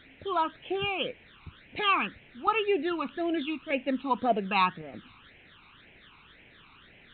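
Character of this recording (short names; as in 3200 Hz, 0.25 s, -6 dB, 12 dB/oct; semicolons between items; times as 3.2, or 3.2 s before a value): chopped level 0.81 Hz, depth 65%, duty 90%; a quantiser's noise floor 8-bit, dither triangular; phasing stages 12, 1.9 Hz, lowest notch 550–1200 Hz; µ-law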